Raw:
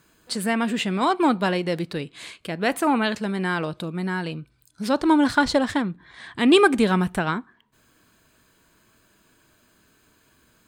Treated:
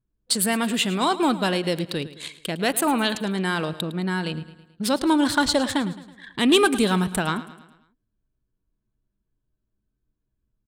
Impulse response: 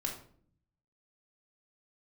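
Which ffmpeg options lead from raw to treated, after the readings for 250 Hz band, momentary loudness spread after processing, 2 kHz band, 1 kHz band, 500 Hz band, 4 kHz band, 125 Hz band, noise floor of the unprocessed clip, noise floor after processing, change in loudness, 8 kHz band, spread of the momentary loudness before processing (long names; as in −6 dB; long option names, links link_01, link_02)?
−1.0 dB, 12 LU, −1.0 dB, −1.5 dB, −1.5 dB, +4.0 dB, 0.0 dB, −62 dBFS, −79 dBFS, 0.0 dB, +9.0 dB, 15 LU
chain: -filter_complex "[0:a]anlmdn=1.58,asplit=2[link_01][link_02];[link_02]acompressor=threshold=-29dB:ratio=6,volume=-2dB[link_03];[link_01][link_03]amix=inputs=2:normalize=0,asoftclip=type=tanh:threshold=-5.5dB,aexciter=amount=2.9:drive=1.2:freq=3000,aecho=1:1:108|216|324|432|540:0.158|0.0808|0.0412|0.021|0.0107,volume=-2.5dB"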